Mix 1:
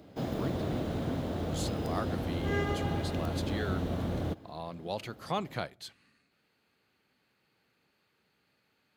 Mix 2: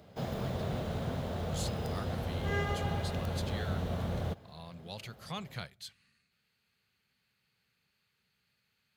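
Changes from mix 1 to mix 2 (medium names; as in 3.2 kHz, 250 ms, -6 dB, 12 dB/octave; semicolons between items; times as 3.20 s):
speech: add peaking EQ 670 Hz -11.5 dB 2.2 oct; master: add peaking EQ 300 Hz -14.5 dB 0.45 oct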